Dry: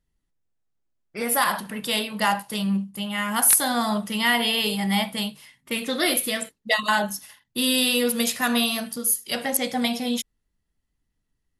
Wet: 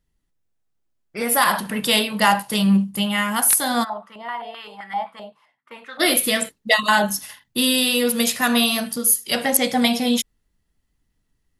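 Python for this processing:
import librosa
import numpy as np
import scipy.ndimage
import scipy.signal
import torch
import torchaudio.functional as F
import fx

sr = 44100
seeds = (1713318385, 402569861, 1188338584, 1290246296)

y = fx.rider(x, sr, range_db=5, speed_s=0.5)
y = fx.filter_held_bandpass(y, sr, hz=7.7, low_hz=620.0, high_hz=1500.0, at=(3.83, 5.99), fade=0.02)
y = y * librosa.db_to_amplitude(4.5)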